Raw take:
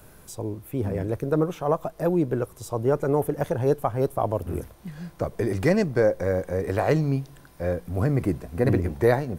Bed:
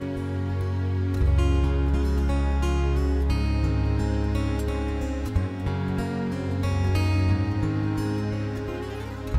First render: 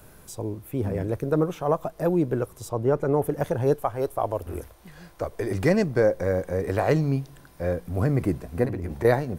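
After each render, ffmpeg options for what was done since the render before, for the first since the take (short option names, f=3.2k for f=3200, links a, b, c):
-filter_complex "[0:a]asettb=1/sr,asplit=3[a][b][c];[a]atrim=end=2.694[d];[b]atrim=start=2.69:end=3.24,asetpts=PTS-STARTPTS,afade=t=in:d=0.004:c=qsin,afade=t=out:st=0.546:d=0.004:c=qsin,highshelf=f=4.9k:g=-8.5[e];[c]atrim=start=3.236[f];[d][e]acrossfade=d=0.004:c1=hsin:c2=qsin[g];[g][f]acrossfade=d=0.004:c1=qsin:c2=hsin,asettb=1/sr,asplit=3[h][i][j];[h]atrim=end=3.764[k];[i]atrim=start=3.76:end=5.51,asetpts=PTS-STARTPTS,afade=t=in:d=0.004:c=qsin,afade=t=out:st=1.746:d=0.004:c=qsin,equalizer=f=170:w=1.1:g=-11.5[l];[j]atrim=start=5.506[m];[k][l]acrossfade=d=0.004:c1=hsin:c2=qsin[n];[n][m]acrossfade=d=0.004:c1=qsin:c2=hsin,asettb=1/sr,asplit=3[o][p][q];[o]atrim=end=8.654[r];[p]atrim=start=8.65:end=9.05,asetpts=PTS-STARTPTS,afade=t=in:d=0.004:c=qsin,afade=t=out:st=0.396:d=0.004:c=qsin,acompressor=threshold=-25dB:ratio=12:attack=3.2:release=140:knee=1:detection=peak[s];[q]atrim=start=9.046[t];[r][s]acrossfade=d=0.004:c1=hsin:c2=qsin[u];[u][t]acrossfade=d=0.004:c1=qsin:c2=hsin"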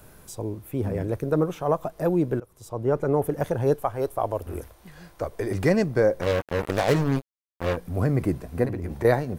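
-filter_complex "[0:a]asettb=1/sr,asplit=3[a][b][c];[a]atrim=end=6.214[d];[b]atrim=start=6.21:end=7.77,asetpts=PTS-STARTPTS,afade=t=in:d=0.004:c=qsin,afade=t=out:st=1.556:d=0.004:c=qsin,acrusher=bits=3:mix=0:aa=0.5[e];[c]atrim=start=7.766[f];[d][e]acrossfade=d=0.004:c1=hsin:c2=qsin[g];[g][f]acrossfade=d=0.004:c1=qsin:c2=hsin,asplit=2[h][i];[h]atrim=end=2.4,asetpts=PTS-STARTPTS,afade=t=out:st=2.396:d=0.004:c=hsin:silence=0.0841395[j];[i]atrim=start=2.4,asetpts=PTS-STARTPTS,afade=t=in:d=0.57:silence=0.0841395[k];[j][k]concat=n=2:v=0:a=1"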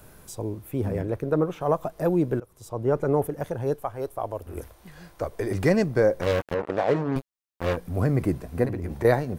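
-filter_complex "[0:a]asettb=1/sr,asplit=3[a][b][c];[a]atrim=end=1.014[d];[b]atrim=start=1.01:end=1.61,asetpts=PTS-STARTPTS,afade=t=in:d=0.004:c=qsin,afade=t=out:st=0.596:d=0.004:c=qsin,bass=f=250:g=-2,treble=f=4k:g=-7[e];[c]atrim=start=1.606[f];[d][e]acrossfade=d=0.004:c1=hsin:c2=qsin[g];[g][f]acrossfade=d=0.004:c1=qsin:c2=hsin,asettb=1/sr,asplit=3[h][i][j];[h]atrim=end=6.544[k];[i]atrim=start=6.54:end=7.16,asetpts=PTS-STARTPTS,afade=t=in:d=0.004:c=qsin,afade=t=out:st=0.616:d=0.004:c=qsin,bandpass=f=570:t=q:w=0.51[l];[j]atrim=start=7.156[m];[k][l]acrossfade=d=0.004:c1=hsin:c2=qsin[n];[n][m]acrossfade=d=0.004:c1=qsin:c2=hsin,asplit=3[o][p][q];[o]atrim=end=3.272[r];[p]atrim=start=3.268:end=4.572,asetpts=PTS-STARTPTS,volume=-4.5dB[s];[q]atrim=start=4.568[t];[r][s]acrossfade=d=0.004:c1=hsin:c2=hsin[u];[u][t]acrossfade=d=0.004:c1=hsin:c2=hsin"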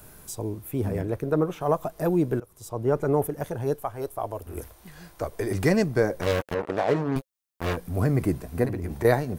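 -af "highshelf=f=6.1k:g=6.5,bandreject=f=530:w=12"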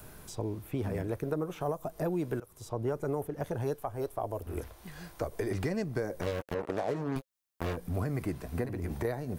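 -filter_complex "[0:a]alimiter=limit=-13dB:level=0:latency=1:release=360,acrossover=split=760|5500[a][b][c];[a]acompressor=threshold=-31dB:ratio=4[d];[b]acompressor=threshold=-43dB:ratio=4[e];[c]acompressor=threshold=-56dB:ratio=4[f];[d][e][f]amix=inputs=3:normalize=0"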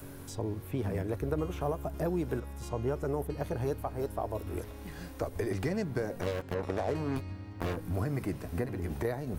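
-filter_complex "[1:a]volume=-19dB[a];[0:a][a]amix=inputs=2:normalize=0"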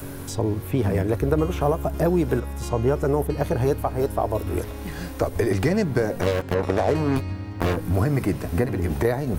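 -af "volume=11dB"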